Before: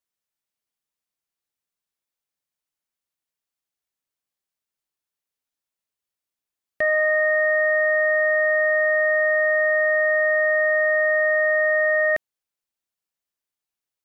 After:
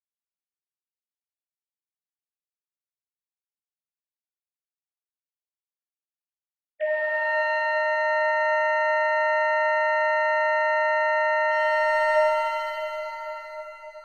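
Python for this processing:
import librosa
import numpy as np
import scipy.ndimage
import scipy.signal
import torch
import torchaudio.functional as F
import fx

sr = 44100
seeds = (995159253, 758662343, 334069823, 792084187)

y = fx.sine_speech(x, sr)
y = fx.leveller(y, sr, passes=1, at=(11.51, 12.15))
y = fx.peak_eq(y, sr, hz=1200.0, db=-12.0, octaves=0.64)
y = fx.echo_bbd(y, sr, ms=283, stages=2048, feedback_pct=84, wet_db=-9.5)
y = fx.rev_shimmer(y, sr, seeds[0], rt60_s=3.3, semitones=7, shimmer_db=-8, drr_db=-7.0)
y = F.gain(torch.from_numpy(y), -6.5).numpy()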